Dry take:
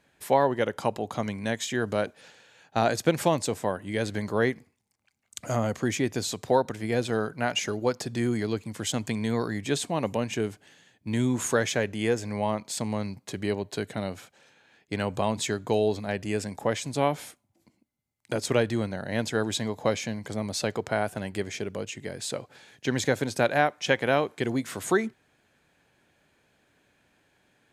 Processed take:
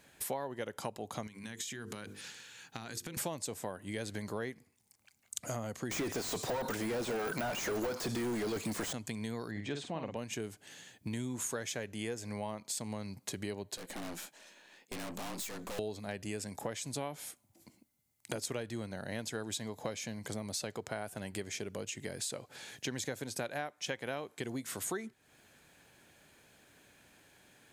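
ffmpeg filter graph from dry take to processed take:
ffmpeg -i in.wav -filter_complex "[0:a]asettb=1/sr,asplit=3[link_01][link_02][link_03];[link_01]atrim=end=1.274[link_04];[link_02]atrim=start=1.27:end=3.17,asetpts=PTS-STARTPTS,afade=type=in:duration=0.004:curve=qsin,afade=type=out:start_time=1.896:duration=0.004:curve=qsin,equalizer=frequency=620:width_type=o:width=0.76:gain=-14,bandreject=frequency=50:width_type=h:width=6,bandreject=frequency=100:width_type=h:width=6,bandreject=frequency=150:width_type=h:width=6,bandreject=frequency=200:width_type=h:width=6,bandreject=frequency=250:width_type=h:width=6,bandreject=frequency=300:width_type=h:width=6,bandreject=frequency=350:width_type=h:width=6,bandreject=frequency=400:width_type=h:width=6,bandreject=frequency=450:width_type=h:width=6,bandreject=frequency=500:width_type=h:width=6,acompressor=threshold=-39dB:ratio=12:attack=3.2:release=140:knee=1:detection=peak[link_05];[link_03]atrim=start=3.166[link_06];[link_04][link_05]acrossfade=duration=0.004:curve1=hsin:curve2=qsin[link_07];[link_07][link_06]acrossfade=duration=0.004:curve1=qsin:curve2=hsin,asettb=1/sr,asplit=3[link_08][link_09][link_10];[link_08]atrim=end=5.914[link_11];[link_09]atrim=start=5.91:end=8.93,asetpts=PTS-STARTPTS,afade=type=in:duration=0.004:curve=qsin,afade=type=out:start_time=3.016:duration=0.004:curve=qsin,bass=frequency=250:gain=0,treble=frequency=4000:gain=9,asplit=2[link_12][link_13];[link_13]highpass=frequency=720:poles=1,volume=38dB,asoftclip=type=tanh:threshold=-9dB[link_14];[link_12][link_14]amix=inputs=2:normalize=0,lowpass=frequency=4300:poles=1,volume=-6dB,deesser=0.65[link_15];[link_10]atrim=start=8.926[link_16];[link_11][link_15]acrossfade=duration=0.004:curve1=hsin:curve2=qsin[link_17];[link_17][link_16]acrossfade=duration=0.004:curve1=qsin:curve2=hsin,asettb=1/sr,asplit=3[link_18][link_19][link_20];[link_18]atrim=end=9.514[link_21];[link_19]atrim=start=9.51:end=10.17,asetpts=PTS-STARTPTS,afade=type=in:duration=0.004:curve=qsin,afade=type=out:start_time=0.656:duration=0.004:curve=qsin,lowpass=3300,asplit=2[link_22][link_23];[link_23]adelay=49,volume=-6dB[link_24];[link_22][link_24]amix=inputs=2:normalize=0,atrim=end_sample=29106[link_25];[link_20]atrim=start=10.166[link_26];[link_21][link_25]acrossfade=duration=0.004:curve1=hsin:curve2=qsin[link_27];[link_27][link_26]acrossfade=duration=0.004:curve1=qsin:curve2=hsin,asettb=1/sr,asplit=3[link_28][link_29][link_30];[link_28]atrim=end=13.774[link_31];[link_29]atrim=start=13.77:end=15.79,asetpts=PTS-STARTPTS,afade=type=in:duration=0.004:curve=qsin,afade=type=out:start_time=2.016:duration=0.004:curve=qsin,asplit=2[link_32][link_33];[link_33]adelay=16,volume=-11.5dB[link_34];[link_32][link_34]amix=inputs=2:normalize=0,atrim=end_sample=89082,afreqshift=77,aeval=exprs='(tanh(112*val(0)+0.65)-tanh(0.65))/112':channel_layout=same[link_35];[link_30]atrim=start=15.786[link_36];[link_31][link_35]acrossfade=duration=0.004:curve1=hsin:curve2=qsin[link_37];[link_37][link_36]acrossfade=duration=0.004:curve1=qsin:curve2=hsin,highshelf=frequency=5700:gain=11,acompressor=threshold=-41dB:ratio=4,volume=2.5dB" out.wav

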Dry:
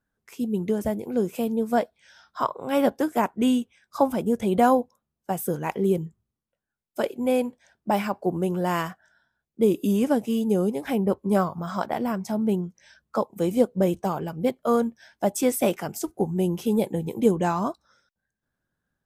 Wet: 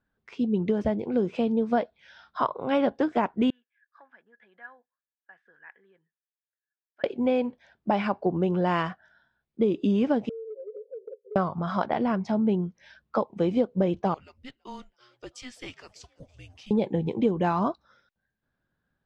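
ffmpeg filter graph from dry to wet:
ffmpeg -i in.wav -filter_complex "[0:a]asettb=1/sr,asplit=3[link_01][link_02][link_03];[link_01]atrim=end=3.504[link_04];[link_02]atrim=start=3.5:end=7.04,asetpts=PTS-STARTPTS,afade=type=in:duration=0.004:curve=qsin,afade=type=out:start_time=3.536:duration=0.004:curve=qsin,acompressor=threshold=-26dB:ratio=1.5:attack=3.2:release=140:knee=1:detection=peak,bandpass=frequency=1700:width_type=q:width=19[link_05];[link_03]atrim=start=7.036[link_06];[link_04][link_05]acrossfade=duration=0.004:curve1=hsin:curve2=qsin[link_07];[link_07][link_06]acrossfade=duration=0.004:curve1=qsin:curve2=hsin,asettb=1/sr,asplit=3[link_08][link_09][link_10];[link_08]atrim=end=10.294[link_11];[link_09]atrim=start=10.29:end=11.36,asetpts=PTS-STARTPTS,afade=type=in:duration=0.004:curve=qsin,afade=type=out:start_time=1.066:duration=0.004:curve=qsin,asuperpass=centerf=470:order=8:qfactor=4.8,acompressor=threshold=-37dB:ratio=12:attack=3.2:release=140:knee=1:detection=peak[link_12];[link_10]atrim=start=11.356[link_13];[link_11][link_12]acrossfade=duration=0.004:curve1=hsin:curve2=qsin[link_14];[link_14][link_13]acrossfade=duration=0.004:curve1=qsin:curve2=hsin,asettb=1/sr,asplit=3[link_15][link_16][link_17];[link_15]atrim=end=14.144[link_18];[link_16]atrim=start=14.14:end=16.71,asetpts=PTS-STARTPTS,afade=type=in:duration=0.004:curve=qsin,afade=type=out:start_time=2.566:duration=0.004:curve=qsin,aderivative,asplit=5[link_19][link_20][link_21][link_22][link_23];[link_20]adelay=330,afreqshift=140,volume=-24dB[link_24];[link_21]adelay=660,afreqshift=280,volume=-28.3dB[link_25];[link_22]adelay=990,afreqshift=420,volume=-32.6dB[link_26];[link_23]adelay=1320,afreqshift=560,volume=-36.9dB[link_27];[link_19][link_24][link_25][link_26][link_27]amix=inputs=5:normalize=0,atrim=end_sample=113337,afreqshift=-250[link_28];[link_17]atrim=start=16.706[link_29];[link_18][link_28]acrossfade=duration=0.004:curve1=hsin:curve2=qsin[link_30];[link_30][link_29]acrossfade=duration=0.004:curve1=qsin:curve2=hsin,lowpass=frequency=4300:width=0.5412,lowpass=frequency=4300:width=1.3066,acompressor=threshold=-22dB:ratio=4,volume=2dB" out.wav

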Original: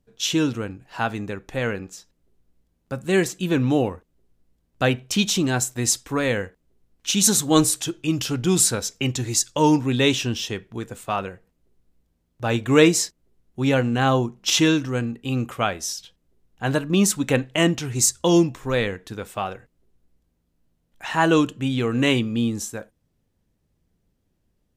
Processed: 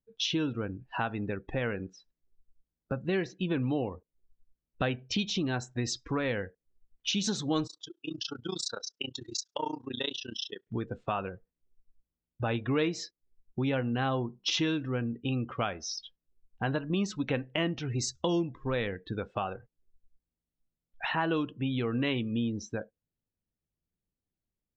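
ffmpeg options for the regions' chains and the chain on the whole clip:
ffmpeg -i in.wav -filter_complex "[0:a]asettb=1/sr,asplit=3[link_01][link_02][link_03];[link_01]atrim=end=7.674[link_04];[link_02]atrim=start=7.67:end=10.67,asetpts=PTS-STARTPTS,afade=type=in:duration=0.004:curve=qsin,afade=type=out:start_time=2.996:duration=0.004:curve=qsin,highpass=frequency=1300:poles=1,tremolo=f=29:d=0.974,equalizer=frequency=2300:width=3.4:gain=-14[link_05];[link_03]atrim=start=10.666[link_06];[link_04][link_05]acrossfade=duration=0.004:curve1=hsin:curve2=qsin[link_07];[link_07][link_06]acrossfade=duration=0.004:curve1=qsin:curve2=hsin,lowpass=frequency=5100:width=0.5412,lowpass=frequency=5100:width=1.3066,afftdn=noise_reduction=25:noise_floor=-39,acompressor=threshold=-37dB:ratio=3,volume=4.5dB" out.wav

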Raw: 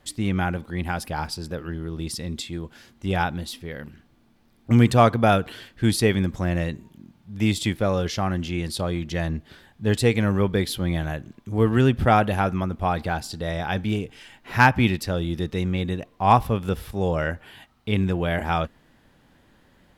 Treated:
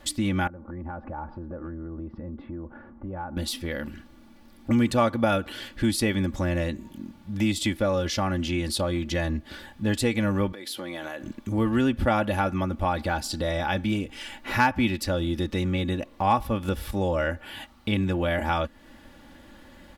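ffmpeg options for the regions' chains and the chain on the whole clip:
ffmpeg -i in.wav -filter_complex "[0:a]asettb=1/sr,asplit=3[link_01][link_02][link_03];[link_01]atrim=end=0.474[link_04];[link_02]atrim=start=0.47:end=3.37,asetpts=PTS-STARTPTS,afade=type=in:duration=0.004:curve=qsin,afade=type=out:start_time=2.896:duration=0.004:curve=qsin,lowpass=frequency=1300:width=0.5412,lowpass=frequency=1300:width=1.3066,acompressor=threshold=-40dB:ratio=5:attack=3.2:release=140:knee=1:detection=peak[link_05];[link_03]atrim=start=3.366[link_06];[link_04][link_05]acrossfade=duration=0.004:curve1=hsin:curve2=qsin[link_07];[link_07][link_06]acrossfade=duration=0.004:curve1=qsin:curve2=hsin,asettb=1/sr,asplit=3[link_08][link_09][link_10];[link_08]atrim=end=10.524[link_11];[link_09]atrim=start=10.52:end=11.23,asetpts=PTS-STARTPTS,afade=type=in:duration=0.004:curve=qsin,afade=type=out:start_time=0.706:duration=0.004:curve=qsin,highpass=340,acompressor=threshold=-36dB:ratio=16:attack=3.2:release=140:knee=1:detection=peak[link_12];[link_10]atrim=start=11.226[link_13];[link_11][link_12]acrossfade=duration=0.004:curve1=hsin:curve2=qsin[link_14];[link_14][link_13]acrossfade=duration=0.004:curve1=qsin:curve2=hsin,aecho=1:1:3.5:0.64,acompressor=threshold=-36dB:ratio=2,volume=6.5dB" out.wav

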